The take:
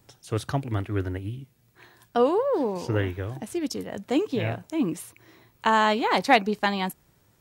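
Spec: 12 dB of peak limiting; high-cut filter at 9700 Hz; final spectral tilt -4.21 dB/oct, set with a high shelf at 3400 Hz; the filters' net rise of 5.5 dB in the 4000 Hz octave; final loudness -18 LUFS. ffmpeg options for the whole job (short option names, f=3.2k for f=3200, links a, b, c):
-af "lowpass=9.7k,highshelf=f=3.4k:g=3.5,equalizer=f=4k:t=o:g=5,volume=10dB,alimiter=limit=-5dB:level=0:latency=1"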